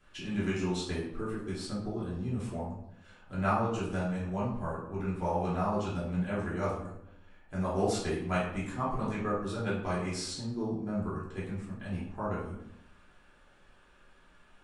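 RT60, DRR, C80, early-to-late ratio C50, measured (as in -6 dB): 0.80 s, -8.5 dB, 7.0 dB, 2.5 dB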